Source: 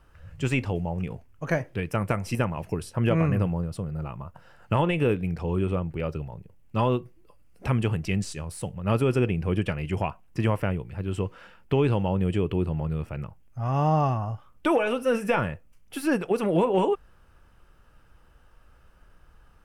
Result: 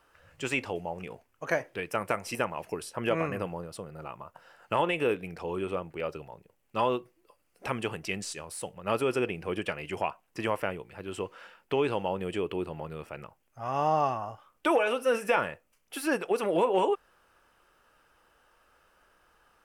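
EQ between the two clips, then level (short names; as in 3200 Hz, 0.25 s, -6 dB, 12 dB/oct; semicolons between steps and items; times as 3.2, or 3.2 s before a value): tone controls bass -11 dB, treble +1 dB; low shelf 160 Hz -10 dB; 0.0 dB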